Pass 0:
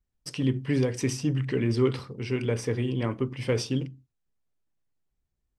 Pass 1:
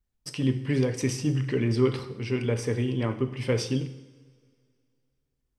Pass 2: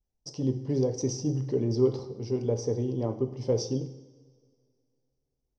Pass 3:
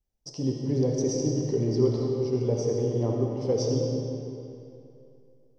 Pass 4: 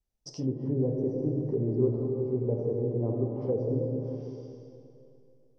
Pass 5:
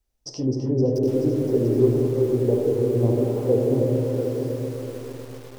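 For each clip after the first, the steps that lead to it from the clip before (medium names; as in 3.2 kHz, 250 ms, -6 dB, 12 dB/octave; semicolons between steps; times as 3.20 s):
two-slope reverb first 0.82 s, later 2.5 s, from -18 dB, DRR 9 dB
FFT filter 260 Hz 0 dB, 380 Hz +4 dB, 790 Hz +5 dB, 1.5 kHz -17 dB, 2.5 kHz -20 dB, 5.9 kHz +5 dB, 9.2 kHz -24 dB; trim -3.5 dB
algorithmic reverb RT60 2.7 s, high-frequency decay 0.8×, pre-delay 35 ms, DRR 0 dB
low-pass that closes with the level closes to 690 Hz, closed at -23.5 dBFS; trim -2.5 dB
peaking EQ 170 Hz -15 dB 0.33 oct; on a send: two-band feedback delay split 480 Hz, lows 83 ms, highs 258 ms, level -9.5 dB; on the sum: bit-crushed delay 691 ms, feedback 35%, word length 8-bit, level -6.5 dB; trim +8 dB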